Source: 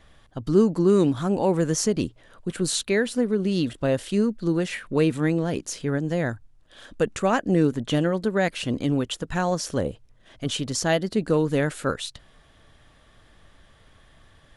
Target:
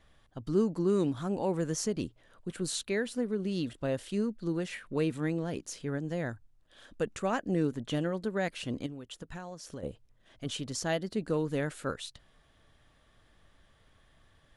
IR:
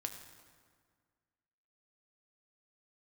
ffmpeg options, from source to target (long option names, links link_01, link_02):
-filter_complex "[0:a]asettb=1/sr,asplit=3[link_01][link_02][link_03];[link_01]atrim=end=8.864[link_04];[link_02]atrim=start=8.86:end=9.83,asetpts=PTS-STARTPTS,afade=type=in:duration=0.004:curve=qsin,afade=type=out:start_time=0.966:duration=0.004:curve=qsin,acompressor=threshold=-30dB:ratio=12[link_05];[link_03]atrim=start=9.826[link_06];[link_04][link_05]acrossfade=duration=0.004:curve1=hsin:curve2=qsin[link_07];[link_07][link_06]acrossfade=duration=0.004:curve1=qsin:curve2=hsin,volume=-9dB"